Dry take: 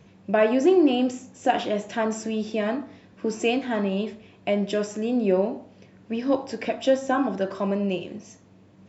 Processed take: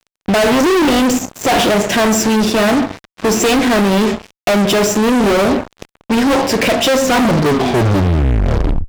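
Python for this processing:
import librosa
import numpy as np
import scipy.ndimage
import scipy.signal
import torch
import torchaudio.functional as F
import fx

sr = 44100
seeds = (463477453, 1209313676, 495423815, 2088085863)

y = fx.tape_stop_end(x, sr, length_s=1.86)
y = fx.fuzz(y, sr, gain_db=38.0, gate_db=-44.0)
y = y * librosa.db_to_amplitude(2.5)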